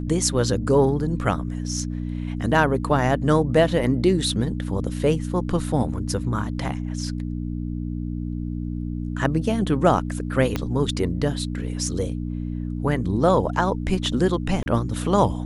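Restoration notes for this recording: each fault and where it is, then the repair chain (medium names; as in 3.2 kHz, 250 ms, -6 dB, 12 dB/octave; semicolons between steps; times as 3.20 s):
hum 60 Hz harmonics 5 -28 dBFS
10.56 s: pop -10 dBFS
14.63–14.66 s: dropout 30 ms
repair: de-click; de-hum 60 Hz, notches 5; interpolate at 14.63 s, 30 ms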